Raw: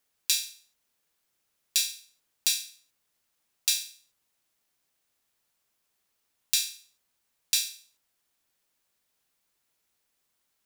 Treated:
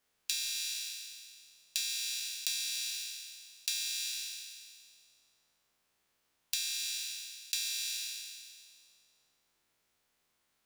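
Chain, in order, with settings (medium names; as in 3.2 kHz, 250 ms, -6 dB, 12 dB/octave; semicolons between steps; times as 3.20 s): spectral sustain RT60 2.01 s; treble shelf 6 kHz -8 dB; compression 12:1, threshold -31 dBFS, peak gain reduction 10.5 dB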